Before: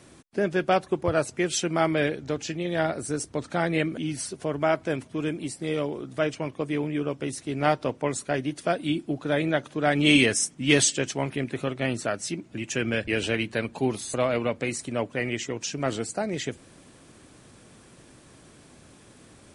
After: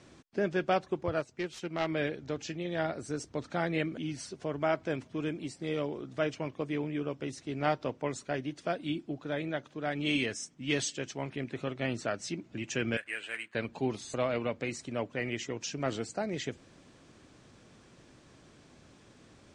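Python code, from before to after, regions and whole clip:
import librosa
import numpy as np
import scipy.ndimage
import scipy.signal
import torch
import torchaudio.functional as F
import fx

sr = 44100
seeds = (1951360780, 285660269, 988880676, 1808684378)

y = fx.chain(x, sr, fx.self_delay(depth_ms=0.19),
    fx.upward_expand(threshold_db=-35.0, expansion=1.5), at=(1.2, 1.89))
y = fx.chain(y, sr, fx.block_float(bits=5),
    fx.bandpass_q(hz=1800.0, q=1.7),
    fx.resample_bad(factor=4, down='filtered', up='hold'), at=(12.97, 13.55))
y = scipy.signal.sosfilt(scipy.signal.butter(4, 7000.0, 'lowpass', fs=sr, output='sos'), y)
y = fx.rider(y, sr, range_db=10, speed_s=2.0)
y = y * 10.0 ** (-8.0 / 20.0)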